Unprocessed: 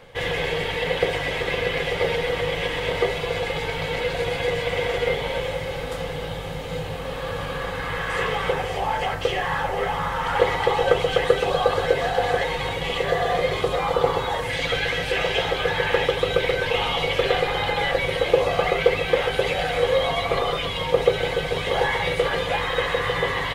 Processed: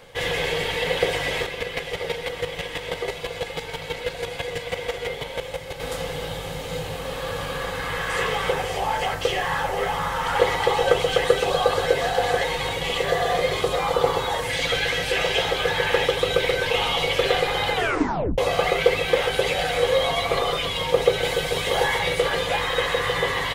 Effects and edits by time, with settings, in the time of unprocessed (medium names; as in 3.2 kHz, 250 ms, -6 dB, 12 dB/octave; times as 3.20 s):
1.44–5.80 s: square tremolo 6.1 Hz, depth 60%, duty 15%
17.73 s: tape stop 0.65 s
21.23–21.98 s: treble shelf 5.3 kHz -> 10 kHz +6 dB
whole clip: tone controls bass -2 dB, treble +7 dB